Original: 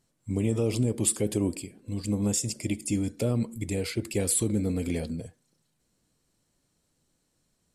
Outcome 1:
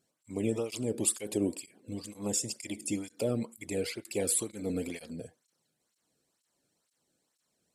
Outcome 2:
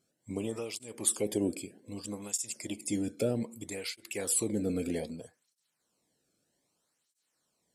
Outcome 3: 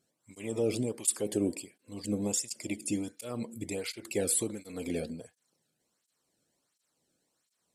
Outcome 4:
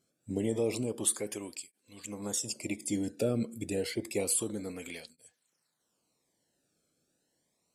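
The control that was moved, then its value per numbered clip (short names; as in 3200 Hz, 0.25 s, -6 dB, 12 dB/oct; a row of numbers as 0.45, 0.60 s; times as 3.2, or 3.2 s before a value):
tape flanging out of phase, nulls at: 2.1, 0.63, 1.4, 0.29 Hz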